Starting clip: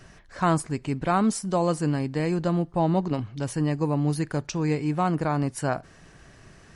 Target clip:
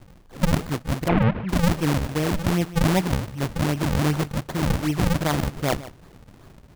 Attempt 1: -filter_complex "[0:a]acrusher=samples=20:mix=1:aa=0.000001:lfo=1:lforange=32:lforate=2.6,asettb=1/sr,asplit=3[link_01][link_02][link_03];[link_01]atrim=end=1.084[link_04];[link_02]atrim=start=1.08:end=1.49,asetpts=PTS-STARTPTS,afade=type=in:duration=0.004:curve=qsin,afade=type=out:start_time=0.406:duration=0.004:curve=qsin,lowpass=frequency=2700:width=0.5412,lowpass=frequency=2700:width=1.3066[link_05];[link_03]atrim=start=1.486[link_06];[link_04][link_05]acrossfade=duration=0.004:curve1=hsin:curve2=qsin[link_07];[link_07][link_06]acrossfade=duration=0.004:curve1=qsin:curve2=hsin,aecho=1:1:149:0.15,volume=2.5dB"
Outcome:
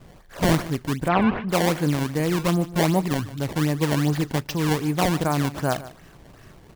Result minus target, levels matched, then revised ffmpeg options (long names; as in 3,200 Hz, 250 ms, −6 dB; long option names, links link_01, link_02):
sample-and-hold swept by an LFO: distortion −11 dB
-filter_complex "[0:a]acrusher=samples=74:mix=1:aa=0.000001:lfo=1:lforange=118:lforate=2.6,asettb=1/sr,asplit=3[link_01][link_02][link_03];[link_01]atrim=end=1.084[link_04];[link_02]atrim=start=1.08:end=1.49,asetpts=PTS-STARTPTS,afade=type=in:duration=0.004:curve=qsin,afade=type=out:start_time=0.406:duration=0.004:curve=qsin,lowpass=frequency=2700:width=0.5412,lowpass=frequency=2700:width=1.3066[link_05];[link_03]atrim=start=1.486[link_06];[link_04][link_05]acrossfade=duration=0.004:curve1=hsin:curve2=qsin[link_07];[link_07][link_06]acrossfade=duration=0.004:curve1=qsin:curve2=hsin,aecho=1:1:149:0.15,volume=2.5dB"